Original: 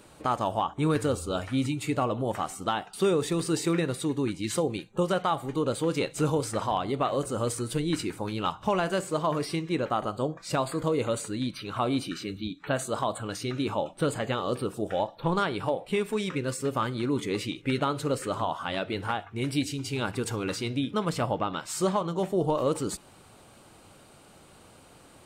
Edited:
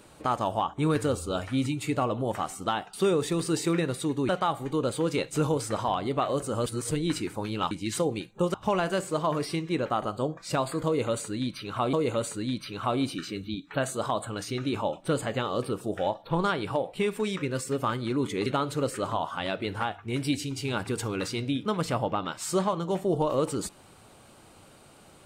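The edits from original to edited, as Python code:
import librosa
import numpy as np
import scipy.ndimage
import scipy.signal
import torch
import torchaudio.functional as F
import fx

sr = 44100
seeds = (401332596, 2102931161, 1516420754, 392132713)

y = fx.edit(x, sr, fx.move(start_s=4.29, length_s=0.83, to_s=8.54),
    fx.reverse_span(start_s=7.49, length_s=0.25),
    fx.repeat(start_s=10.86, length_s=1.07, count=2),
    fx.cut(start_s=17.39, length_s=0.35), tone=tone)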